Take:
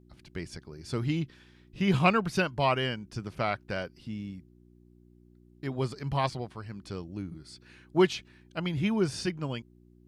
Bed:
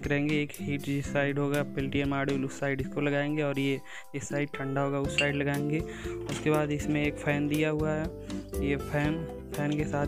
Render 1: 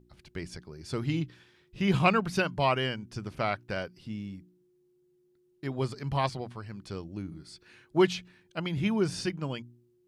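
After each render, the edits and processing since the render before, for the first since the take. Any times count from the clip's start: de-hum 60 Hz, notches 5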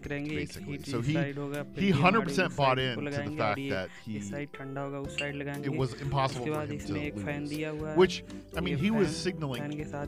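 add bed -7 dB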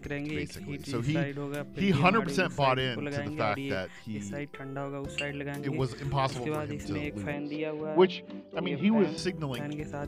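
7.33–9.18 s: cabinet simulation 200–3900 Hz, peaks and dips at 210 Hz +7 dB, 550 Hz +6 dB, 870 Hz +4 dB, 1.6 kHz -7 dB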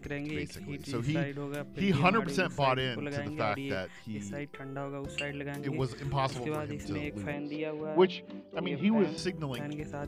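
trim -2 dB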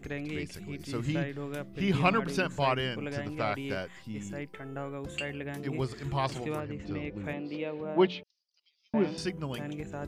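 6.60–7.24 s: distance through air 170 m; 8.23–8.94 s: Butterworth band-pass 5.4 kHz, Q 4.1

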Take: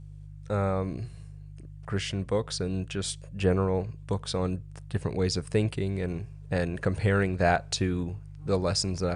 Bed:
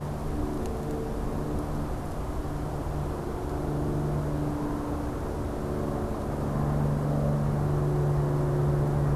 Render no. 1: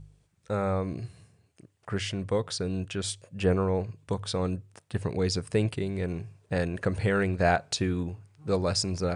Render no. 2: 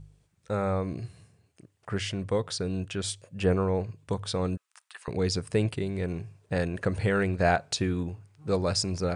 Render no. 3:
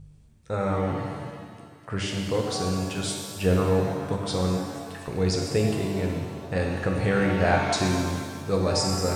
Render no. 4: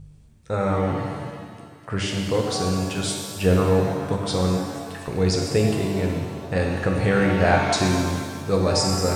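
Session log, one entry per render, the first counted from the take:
de-hum 50 Hz, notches 3
4.57–5.08 s: Chebyshev high-pass 1.1 kHz, order 3
pitch-shifted reverb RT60 1.8 s, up +7 st, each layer -8 dB, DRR 0 dB
trim +3.5 dB

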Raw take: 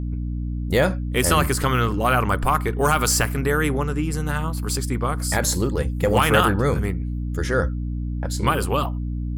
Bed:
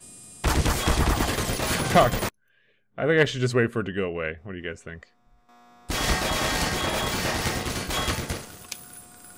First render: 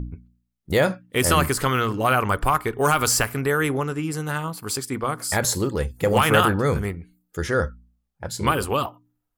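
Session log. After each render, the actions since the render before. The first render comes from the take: de-hum 60 Hz, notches 5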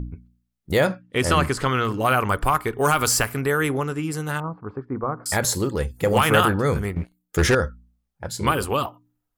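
0.87–1.85 s: distance through air 59 m; 4.40–5.26 s: low-pass 1.3 kHz 24 dB/octave; 6.96–7.55 s: waveshaping leveller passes 3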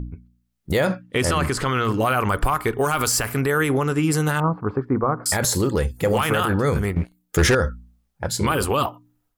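level rider gain up to 10.5 dB; peak limiter -11 dBFS, peak gain reduction 10 dB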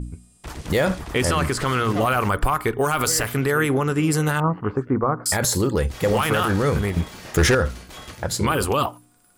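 add bed -12.5 dB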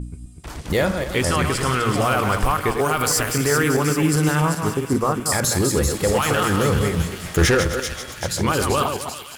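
backward echo that repeats 130 ms, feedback 42%, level -6 dB; on a send: feedback echo behind a high-pass 388 ms, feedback 62%, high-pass 2.8 kHz, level -5.5 dB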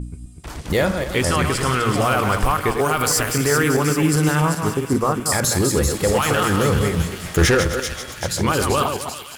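trim +1 dB

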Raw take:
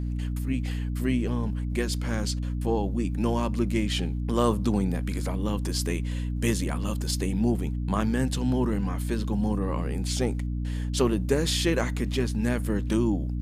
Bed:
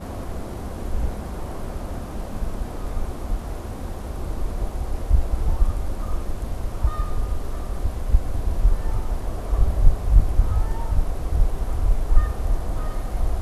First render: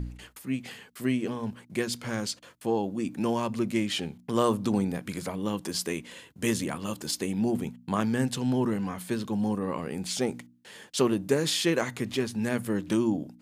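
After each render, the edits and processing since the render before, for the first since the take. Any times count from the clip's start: de-hum 60 Hz, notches 5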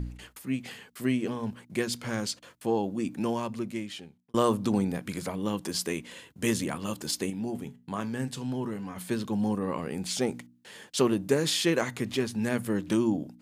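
3.04–4.34 s: fade out linear; 7.30–8.96 s: feedback comb 140 Hz, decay 0.24 s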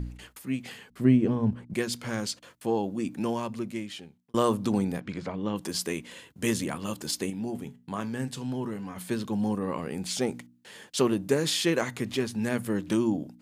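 0.90–1.74 s: tilt EQ -3.5 dB/octave; 5.00–5.56 s: distance through air 160 m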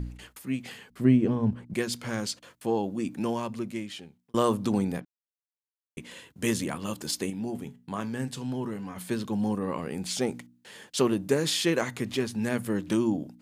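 5.05–5.97 s: mute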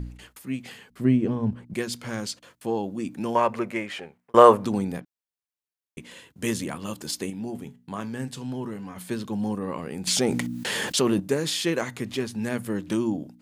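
3.35–4.65 s: high-order bell 1 kHz +13.5 dB 2.9 oct; 10.07–11.20 s: level flattener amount 70%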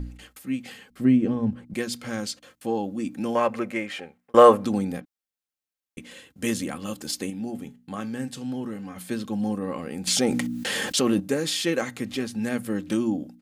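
band-stop 980 Hz, Q 7.4; comb 3.8 ms, depth 37%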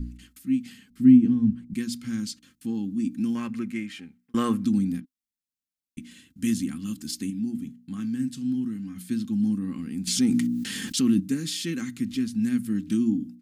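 FFT filter 140 Hz 0 dB, 260 Hz +5 dB, 560 Hz -28 dB, 1.4 kHz -10 dB, 5.1 kHz -3 dB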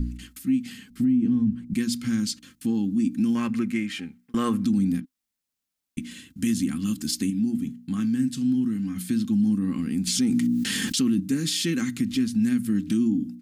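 in parallel at +3 dB: compression, threshold -32 dBFS, peak gain reduction 19.5 dB; on the sum: peak limiter -15.5 dBFS, peak gain reduction 9.5 dB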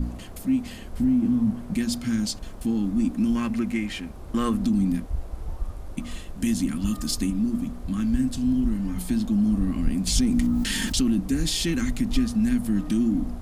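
add bed -11 dB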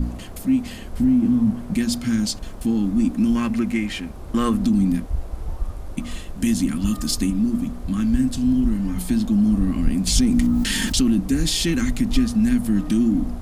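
trim +4 dB

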